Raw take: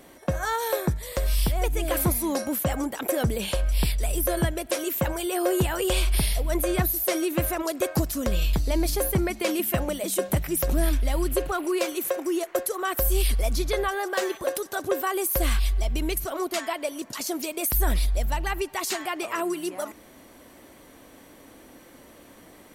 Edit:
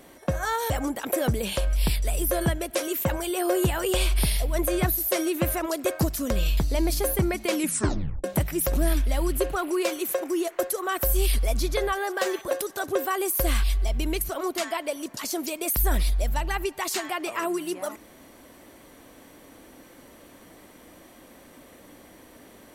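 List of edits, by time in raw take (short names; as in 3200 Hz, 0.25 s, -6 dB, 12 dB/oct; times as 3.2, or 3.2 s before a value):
0.7–2.66 cut
9.52 tape stop 0.68 s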